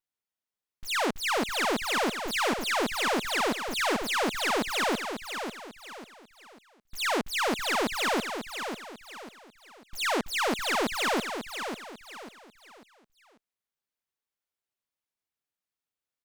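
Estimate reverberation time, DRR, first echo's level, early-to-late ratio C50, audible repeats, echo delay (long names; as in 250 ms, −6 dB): no reverb audible, no reverb audible, −7.5 dB, no reverb audible, 4, 544 ms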